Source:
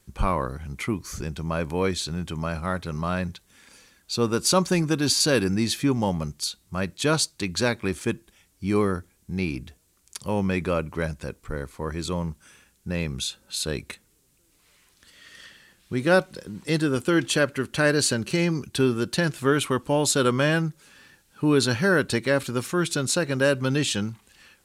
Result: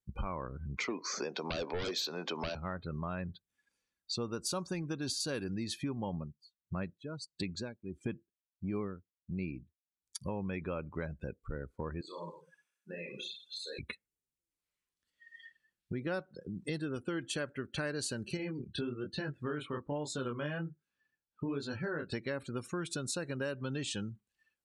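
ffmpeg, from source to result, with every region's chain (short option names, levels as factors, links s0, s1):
-filter_complex "[0:a]asettb=1/sr,asplit=3[s0][s1][s2];[s0]atrim=end=0.774[s3];[s1]atrim=start=0.77:end=2.55,asetpts=PTS-STARTPTS,afade=t=in:d=0.004:c=qsin,afade=t=out:st=1.776:d=0.004:c=qsin,highpass=f=320:w=0.5412,highpass=f=320:w=1.3066,equalizer=f=330:t=q:w=4:g=-6,equalizer=f=480:t=q:w=4:g=3,equalizer=f=690:t=q:w=4:g=4,equalizer=f=1000:t=q:w=4:g=4,equalizer=f=3100:t=q:w=4:g=-4,lowpass=f=5700:w=0.5412,lowpass=f=5700:w=1.3066,aeval=exprs='0.237*sin(PI/2*3.98*val(0)/0.237)':c=same,acrossover=split=470|3000[s4][s5][s6];[s5]acompressor=threshold=0.0355:ratio=4:attack=3.2:release=140:knee=2.83:detection=peak[s7];[s4][s7][s6]amix=inputs=3:normalize=0[s8];[s2]atrim=start=2.546[s9];[s3][s8]acrossfade=d=0.004:c1=hsin:c2=qsin[s10];[s10][s9]acrossfade=d=0.004:c1=qsin:c2=hsin,asettb=1/sr,asplit=3[s11][s12][s13];[s11]atrim=end=6.134[s14];[s12]atrim=start=6.13:end=10.22,asetpts=PTS-STARTPTS,afade=t=in:d=0.004:c=qsin,afade=t=out:st=4.086:d=0.004:c=qsin,equalizer=f=180:t=o:w=2:g=4,aeval=exprs='val(0)*pow(10,-20*(0.5-0.5*cos(2*PI*1.5*n/s))/20)':c=same[s15];[s13]atrim=start=10.216[s16];[s14][s15]acrossfade=d=0.004:c1=hsin:c2=qsin[s17];[s17][s16]acrossfade=d=0.004:c1=qsin:c2=hsin,asettb=1/sr,asplit=3[s18][s19][s20];[s18]atrim=end=12.014[s21];[s19]atrim=start=12.01:end=13.79,asetpts=PTS-STARTPTS,afade=t=in:d=0.004:c=qsin,afade=t=out:st=1.776:d=0.004:c=qsin,highpass=530,acompressor=threshold=0.0141:ratio=16:attack=3.2:release=140:knee=1:detection=peak,aecho=1:1:30|64.5|104.2|149.8|202.3|262.6|332:0.794|0.631|0.501|0.398|0.316|0.251|0.2,atrim=end_sample=78498[s22];[s20]atrim=start=13.786[s23];[s21][s22]acrossfade=d=0.004:c1=hsin:c2=qsin[s24];[s24][s23]acrossfade=d=0.004:c1=qsin:c2=hsin,asettb=1/sr,asplit=3[s25][s26][s27];[s25]atrim=end=18.374[s28];[s26]atrim=start=18.37:end=22.12,asetpts=PTS-STARTPTS,afade=t=in:d=0.004:c=qsin,afade=t=out:st=3.746:d=0.004:c=qsin,flanger=delay=20:depth=7.2:speed=1.2,highshelf=f=7500:g=-10[s29];[s27]atrim=start=22.116[s30];[s28][s29]acrossfade=d=0.004:c1=hsin:c2=qsin[s31];[s31][s30]acrossfade=d=0.004:c1=qsin:c2=hsin,afftdn=nr=32:nf=-37,acompressor=threshold=0.0141:ratio=4"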